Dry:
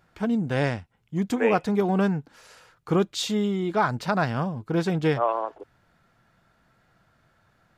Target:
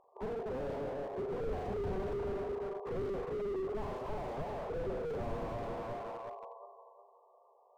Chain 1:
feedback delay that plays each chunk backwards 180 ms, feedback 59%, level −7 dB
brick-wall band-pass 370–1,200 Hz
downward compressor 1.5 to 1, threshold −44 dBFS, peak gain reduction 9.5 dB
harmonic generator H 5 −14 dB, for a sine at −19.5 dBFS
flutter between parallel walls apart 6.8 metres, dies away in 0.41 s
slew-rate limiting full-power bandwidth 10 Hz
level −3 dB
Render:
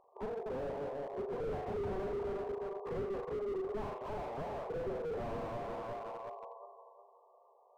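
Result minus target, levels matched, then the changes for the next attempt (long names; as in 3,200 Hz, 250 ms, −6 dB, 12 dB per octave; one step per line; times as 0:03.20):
downward compressor: peak gain reduction +9.5 dB
remove: downward compressor 1.5 to 1, threshold −44 dBFS, peak gain reduction 9.5 dB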